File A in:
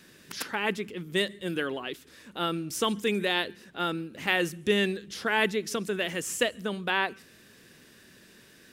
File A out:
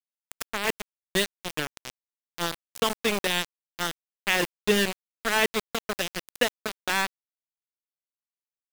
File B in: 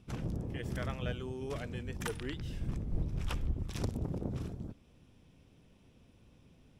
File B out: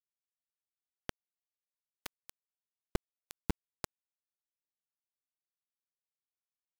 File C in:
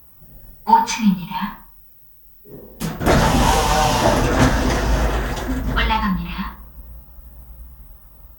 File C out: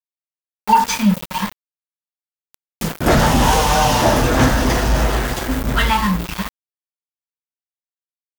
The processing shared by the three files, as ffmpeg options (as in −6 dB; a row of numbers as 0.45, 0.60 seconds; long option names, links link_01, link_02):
-af "acontrast=71,aeval=exprs='val(0)*gte(abs(val(0)),0.133)':channel_layout=same,volume=-3.5dB"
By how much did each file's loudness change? +1.5, −6.0, +2.0 LU